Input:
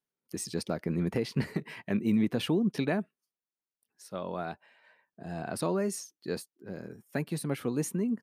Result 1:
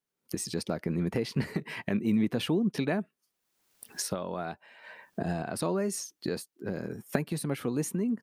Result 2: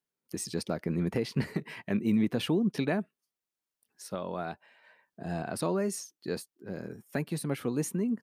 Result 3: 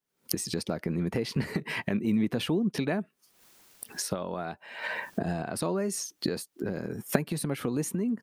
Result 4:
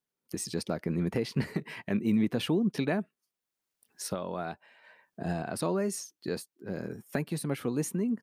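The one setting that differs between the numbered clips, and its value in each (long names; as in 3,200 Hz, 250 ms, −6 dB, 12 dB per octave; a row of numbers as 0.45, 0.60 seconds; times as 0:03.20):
camcorder AGC, rising by: 35, 5.2, 86, 13 dB per second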